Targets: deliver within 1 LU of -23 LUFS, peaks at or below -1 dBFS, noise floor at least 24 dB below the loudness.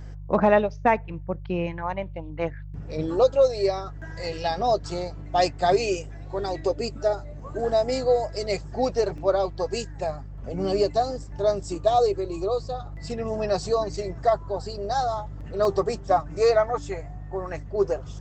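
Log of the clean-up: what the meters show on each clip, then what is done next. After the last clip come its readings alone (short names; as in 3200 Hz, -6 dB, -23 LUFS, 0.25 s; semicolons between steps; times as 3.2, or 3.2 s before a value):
dropouts 2; longest dropout 1.4 ms; hum 50 Hz; harmonics up to 150 Hz; hum level -35 dBFS; loudness -25.5 LUFS; peak -7.5 dBFS; loudness target -23.0 LUFS
-> interpolate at 9.18/15.65, 1.4 ms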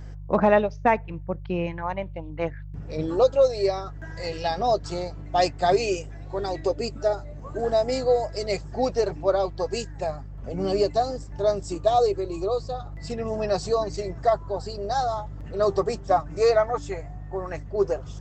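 dropouts 0; hum 50 Hz; harmonics up to 150 Hz; hum level -35 dBFS
-> de-hum 50 Hz, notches 3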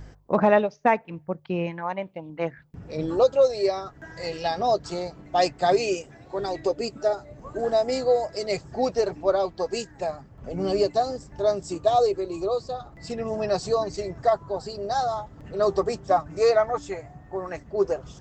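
hum none; loudness -25.5 LUFS; peak -8.0 dBFS; loudness target -23.0 LUFS
-> gain +2.5 dB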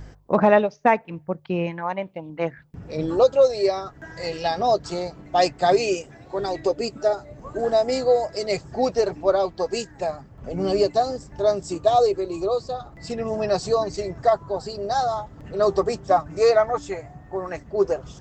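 loudness -23.0 LUFS; peak -5.5 dBFS; noise floor -48 dBFS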